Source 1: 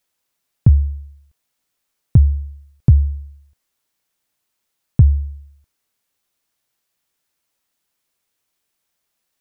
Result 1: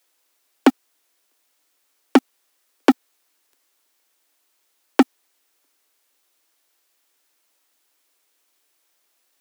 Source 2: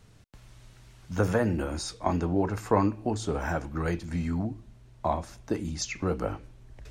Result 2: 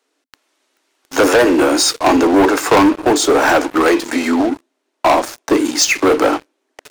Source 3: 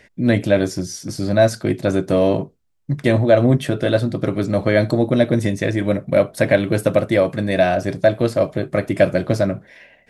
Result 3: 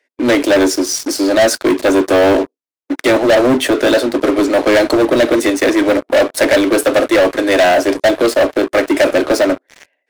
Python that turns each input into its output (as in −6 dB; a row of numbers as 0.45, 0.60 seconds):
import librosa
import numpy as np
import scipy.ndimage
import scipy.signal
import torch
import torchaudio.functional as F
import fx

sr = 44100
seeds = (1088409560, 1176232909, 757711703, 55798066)

y = scipy.signal.sosfilt(scipy.signal.butter(16, 260.0, 'highpass', fs=sr, output='sos'), x)
y = fx.leveller(y, sr, passes=5)
y = librosa.util.normalize(y) * 10.0 ** (-6 / 20.0)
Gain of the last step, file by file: +16.5, +5.0, −5.0 decibels